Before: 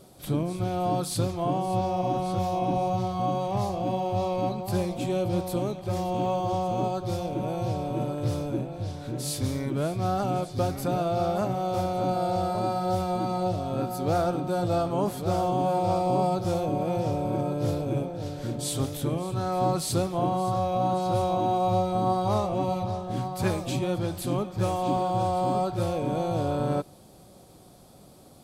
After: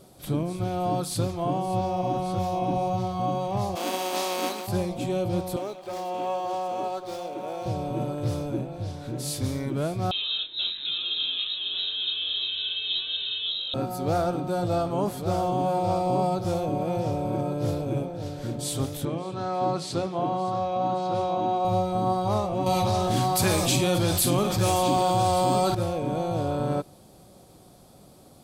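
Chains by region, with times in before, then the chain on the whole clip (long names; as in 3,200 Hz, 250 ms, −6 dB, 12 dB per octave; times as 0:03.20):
0:03.75–0:04.66: compressing power law on the bin magnitudes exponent 0.52 + Butterworth high-pass 230 Hz
0:05.56–0:07.66: high-pass filter 420 Hz + windowed peak hold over 3 samples
0:10.11–0:13.74: chorus effect 2.4 Hz, delay 19.5 ms, depth 4.2 ms + voice inversion scrambler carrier 3,900 Hz
0:19.05–0:21.65: band-pass filter 150–5,500 Hz + mains-hum notches 60/120/180/240/300/360/420/480/540 Hz
0:22.66–0:25.75: high-shelf EQ 2,400 Hz +11.5 dB + double-tracking delay 46 ms −11 dB + envelope flattener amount 70%
whole clip: no processing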